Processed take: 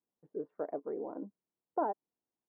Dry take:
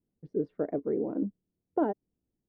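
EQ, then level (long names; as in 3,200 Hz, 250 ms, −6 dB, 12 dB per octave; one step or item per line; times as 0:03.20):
resonant band-pass 960 Hz, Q 2.1
high-frequency loss of the air 250 metres
+4.5 dB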